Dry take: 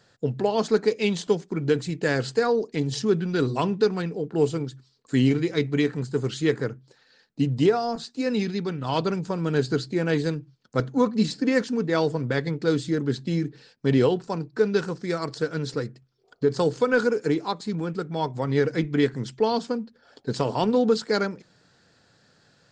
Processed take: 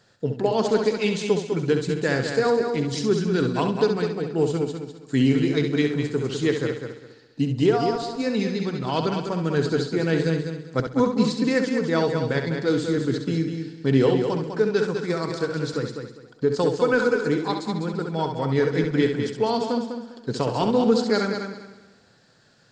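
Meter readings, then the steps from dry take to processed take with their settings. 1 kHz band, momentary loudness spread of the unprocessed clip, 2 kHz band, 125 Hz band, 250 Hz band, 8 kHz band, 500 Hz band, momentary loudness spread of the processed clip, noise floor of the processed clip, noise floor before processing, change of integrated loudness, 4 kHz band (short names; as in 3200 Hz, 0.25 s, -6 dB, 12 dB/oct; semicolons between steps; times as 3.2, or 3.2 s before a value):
+1.5 dB, 8 LU, +2.0 dB, +1.5 dB, +2.0 dB, +1.5 dB, +1.5 dB, 8 LU, -55 dBFS, -62 dBFS, +1.5 dB, +1.5 dB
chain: multi-head echo 67 ms, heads first and third, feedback 42%, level -7 dB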